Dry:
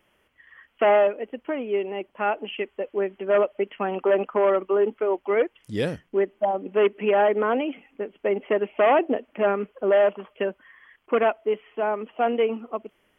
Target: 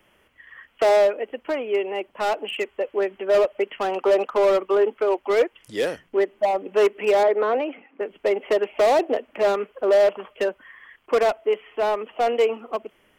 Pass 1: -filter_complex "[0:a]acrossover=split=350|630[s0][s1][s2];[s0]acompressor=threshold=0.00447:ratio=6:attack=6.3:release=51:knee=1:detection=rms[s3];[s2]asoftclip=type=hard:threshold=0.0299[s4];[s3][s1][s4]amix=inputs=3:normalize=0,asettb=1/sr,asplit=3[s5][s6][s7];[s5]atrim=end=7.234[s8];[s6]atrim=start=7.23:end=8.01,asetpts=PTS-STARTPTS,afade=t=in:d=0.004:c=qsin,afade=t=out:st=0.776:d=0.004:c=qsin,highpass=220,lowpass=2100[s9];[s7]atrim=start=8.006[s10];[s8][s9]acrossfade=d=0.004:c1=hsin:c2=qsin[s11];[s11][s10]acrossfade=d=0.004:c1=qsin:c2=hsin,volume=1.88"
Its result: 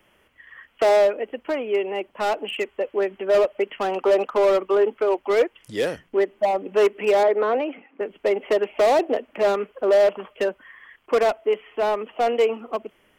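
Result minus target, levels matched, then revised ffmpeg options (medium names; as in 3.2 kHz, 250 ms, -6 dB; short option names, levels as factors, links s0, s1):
compression: peak gain reduction -6.5 dB
-filter_complex "[0:a]acrossover=split=350|630[s0][s1][s2];[s0]acompressor=threshold=0.00188:ratio=6:attack=6.3:release=51:knee=1:detection=rms[s3];[s2]asoftclip=type=hard:threshold=0.0299[s4];[s3][s1][s4]amix=inputs=3:normalize=0,asettb=1/sr,asplit=3[s5][s6][s7];[s5]atrim=end=7.234[s8];[s6]atrim=start=7.23:end=8.01,asetpts=PTS-STARTPTS,afade=t=in:d=0.004:c=qsin,afade=t=out:st=0.776:d=0.004:c=qsin,highpass=220,lowpass=2100[s9];[s7]atrim=start=8.006[s10];[s8][s9]acrossfade=d=0.004:c1=hsin:c2=qsin[s11];[s11][s10]acrossfade=d=0.004:c1=qsin:c2=hsin,volume=1.88"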